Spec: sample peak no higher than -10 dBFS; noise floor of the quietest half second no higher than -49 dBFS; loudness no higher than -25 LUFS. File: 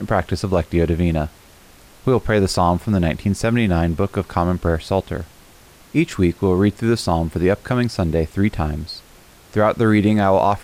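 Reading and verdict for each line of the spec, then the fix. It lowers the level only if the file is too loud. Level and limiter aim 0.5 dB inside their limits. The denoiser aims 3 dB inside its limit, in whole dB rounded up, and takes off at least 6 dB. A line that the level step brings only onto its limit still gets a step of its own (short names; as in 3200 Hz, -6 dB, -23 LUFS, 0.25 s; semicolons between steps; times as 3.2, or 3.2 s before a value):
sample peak -5.5 dBFS: fail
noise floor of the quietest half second -47 dBFS: fail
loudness -19.0 LUFS: fail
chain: gain -6.5 dB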